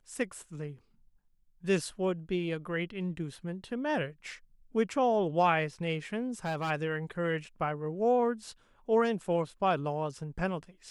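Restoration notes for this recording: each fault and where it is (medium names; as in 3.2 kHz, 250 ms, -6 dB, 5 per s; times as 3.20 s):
6.28–6.71 s: clipped -29 dBFS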